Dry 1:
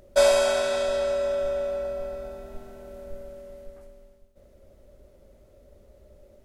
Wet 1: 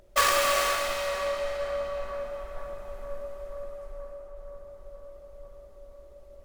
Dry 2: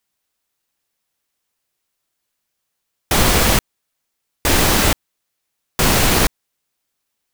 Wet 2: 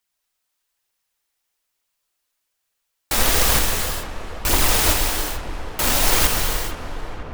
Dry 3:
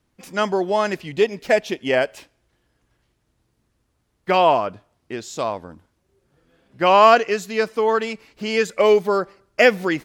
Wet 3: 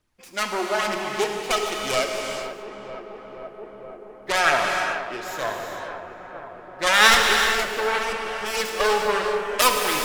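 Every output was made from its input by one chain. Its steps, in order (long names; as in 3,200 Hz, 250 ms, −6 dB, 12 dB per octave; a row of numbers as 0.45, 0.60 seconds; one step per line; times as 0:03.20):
phase distortion by the signal itself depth 0.69 ms
parametric band 170 Hz −9 dB 2.7 octaves
feedback echo with a low-pass in the loop 478 ms, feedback 83%, low-pass 1,900 Hz, level −10.5 dB
phase shifter 1.1 Hz, delay 4.1 ms, feedback 36%
reverb whose tail is shaped and stops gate 460 ms flat, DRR 1.5 dB
level −3 dB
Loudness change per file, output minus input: −4.0, −3.0, −2.5 LU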